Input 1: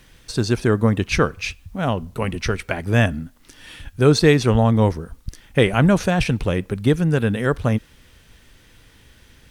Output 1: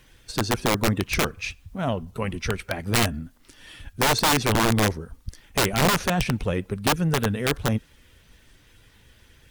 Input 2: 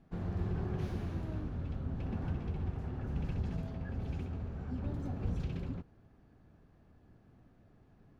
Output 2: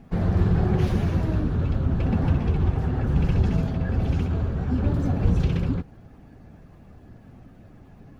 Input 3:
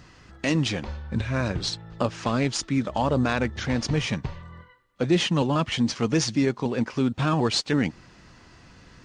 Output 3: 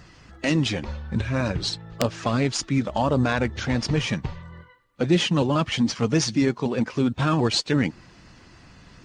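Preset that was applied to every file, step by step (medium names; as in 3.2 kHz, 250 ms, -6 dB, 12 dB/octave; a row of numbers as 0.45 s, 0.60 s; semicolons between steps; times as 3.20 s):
coarse spectral quantiser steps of 15 dB; integer overflow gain 10 dB; normalise loudness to -24 LUFS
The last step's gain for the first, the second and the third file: -4.0 dB, +15.0 dB, +2.0 dB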